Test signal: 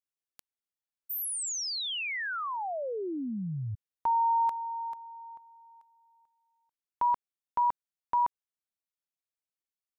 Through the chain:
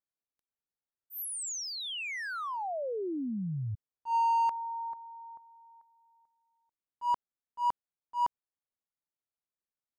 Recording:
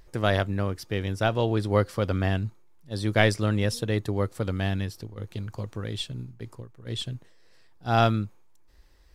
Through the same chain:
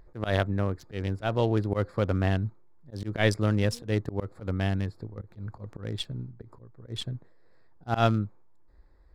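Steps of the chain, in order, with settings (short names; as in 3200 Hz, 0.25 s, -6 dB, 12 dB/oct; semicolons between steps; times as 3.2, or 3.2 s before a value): Wiener smoothing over 15 samples; auto swell 0.105 s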